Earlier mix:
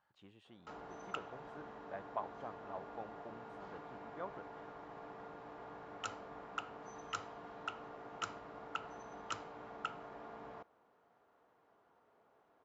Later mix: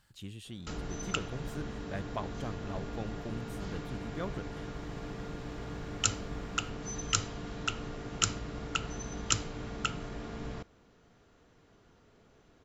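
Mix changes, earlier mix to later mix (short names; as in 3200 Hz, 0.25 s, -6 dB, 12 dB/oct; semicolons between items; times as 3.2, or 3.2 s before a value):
speech: add high shelf 8100 Hz +9.5 dB; master: remove band-pass 860 Hz, Q 1.7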